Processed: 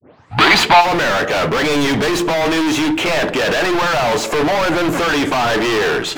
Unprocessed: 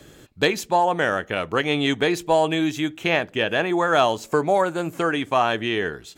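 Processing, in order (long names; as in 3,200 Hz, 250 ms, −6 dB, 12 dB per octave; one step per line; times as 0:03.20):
turntable start at the beginning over 0.57 s
high-pass filter 75 Hz 24 dB per octave
mid-hump overdrive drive 38 dB, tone 1,200 Hz, clips at −3 dBFS
gain into a clipping stage and back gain 17.5 dB
gain on a spectral selection 0:00.31–0:00.81, 630–4,900 Hz +9 dB
convolution reverb RT60 0.60 s, pre-delay 7 ms, DRR 16.5 dB
level +2.5 dB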